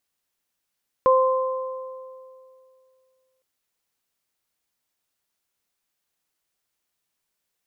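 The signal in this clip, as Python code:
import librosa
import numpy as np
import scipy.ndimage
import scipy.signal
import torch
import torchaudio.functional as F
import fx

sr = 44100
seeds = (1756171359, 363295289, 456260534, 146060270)

y = fx.additive(sr, length_s=2.36, hz=520.0, level_db=-14.0, upper_db=(-2.0,), decay_s=2.47, upper_decays_s=(1.97,))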